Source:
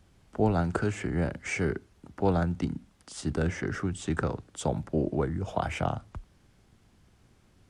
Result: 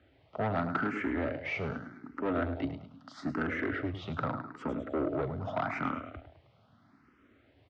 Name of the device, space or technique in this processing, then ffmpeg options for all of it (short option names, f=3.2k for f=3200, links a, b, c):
barber-pole phaser into a guitar amplifier: -filter_complex "[0:a]aecho=1:1:105|210|315|420:0.282|0.121|0.0521|0.0224,asettb=1/sr,asplit=3[a][b][c];[a]atrim=end=4.264[d];[b]atrim=start=4.26:end=4.69,asetpts=PTS-STARTPTS,afade=t=in:d=0.004:c=qsin,afade=t=out:st=0.426:d=0.004:c=qsin,equalizer=f=6.4k:t=o:w=0.84:g=-8.5[e];[c]atrim=start=4.686[f];[d][e]acrossfade=d=0.004:c1=hsin:c2=qsin[g];[g][f]acrossfade=d=0.004:c1=qsin:c2=hsin,highpass=47,asplit=2[h][i];[i]afreqshift=0.81[j];[h][j]amix=inputs=2:normalize=1,asoftclip=type=tanh:threshold=-29.5dB,highpass=82,equalizer=f=180:t=q:w=4:g=-6,equalizer=f=270:t=q:w=4:g=10,equalizer=f=630:t=q:w=4:g=8,equalizer=f=1.3k:t=q:w=4:g=10,equalizer=f=2k:t=q:w=4:g=5,lowpass=f=4k:w=0.5412,lowpass=f=4k:w=1.3066,highshelf=f=8.4k:g=3.5"